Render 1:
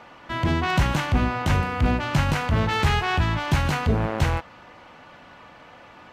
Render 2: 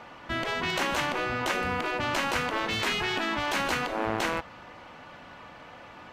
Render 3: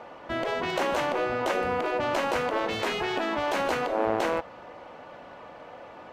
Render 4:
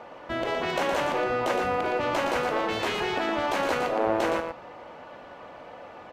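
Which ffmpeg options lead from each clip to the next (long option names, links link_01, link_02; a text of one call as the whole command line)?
ffmpeg -i in.wav -af "afftfilt=real='re*lt(hypot(re,im),0.224)':imag='im*lt(hypot(re,im),0.224)':win_size=1024:overlap=0.75" out.wav
ffmpeg -i in.wav -af "equalizer=frequency=540:width=0.76:gain=12,volume=-5dB" out.wav
ffmpeg -i in.wav -af "aecho=1:1:115:0.501" out.wav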